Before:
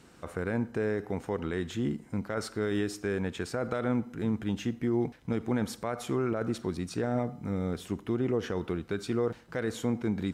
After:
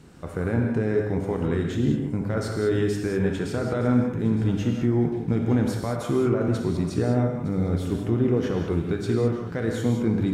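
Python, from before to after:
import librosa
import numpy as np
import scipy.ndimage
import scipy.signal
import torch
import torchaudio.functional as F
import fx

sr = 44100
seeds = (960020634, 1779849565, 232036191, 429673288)

p1 = fx.low_shelf(x, sr, hz=360.0, db=9.5)
p2 = p1 + fx.echo_feedback(p1, sr, ms=912, feedback_pct=35, wet_db=-16, dry=0)
y = fx.rev_gated(p2, sr, seeds[0], gate_ms=230, shape='flat', drr_db=1.0)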